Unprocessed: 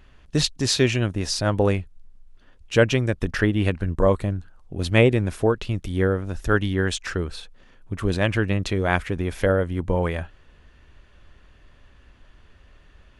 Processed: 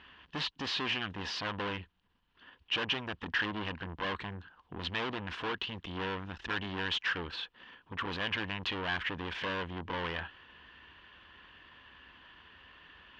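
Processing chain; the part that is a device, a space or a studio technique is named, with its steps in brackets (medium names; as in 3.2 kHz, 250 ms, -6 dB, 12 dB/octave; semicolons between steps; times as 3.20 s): guitar amplifier (valve stage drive 32 dB, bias 0.25; tone controls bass -5 dB, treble +3 dB; cabinet simulation 92–4100 Hz, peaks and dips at 120 Hz -8 dB, 400 Hz -3 dB, 600 Hz -7 dB, 1 kHz +8 dB, 1.7 kHz +7 dB, 3 kHz +10 dB)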